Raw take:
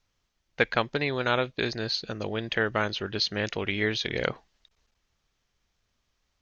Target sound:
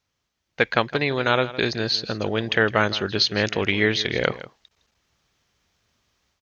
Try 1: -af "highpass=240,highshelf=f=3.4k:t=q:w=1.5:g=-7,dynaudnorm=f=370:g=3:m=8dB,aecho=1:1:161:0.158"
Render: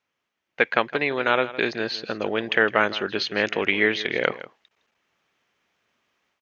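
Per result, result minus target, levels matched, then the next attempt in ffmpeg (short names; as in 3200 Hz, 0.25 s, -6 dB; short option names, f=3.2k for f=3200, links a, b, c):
125 Hz band -10.0 dB; 8000 Hz band -7.5 dB
-af "highpass=68,highshelf=f=3.4k:t=q:w=1.5:g=-7,dynaudnorm=f=370:g=3:m=8dB,aecho=1:1:161:0.158"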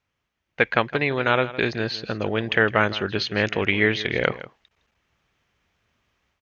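8000 Hz band -8.5 dB
-af "highpass=68,dynaudnorm=f=370:g=3:m=8dB,aecho=1:1:161:0.158"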